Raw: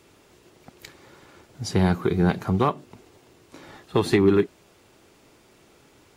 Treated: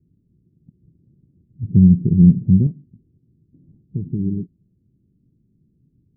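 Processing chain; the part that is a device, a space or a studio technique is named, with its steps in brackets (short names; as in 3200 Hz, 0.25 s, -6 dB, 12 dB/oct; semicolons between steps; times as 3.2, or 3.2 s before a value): the neighbour's flat through the wall (LPF 230 Hz 24 dB/oct; bell 150 Hz +6.5 dB 0.93 oct); 1.63–2.67 resonant low shelf 750 Hz +8 dB, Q 1.5; gain -1 dB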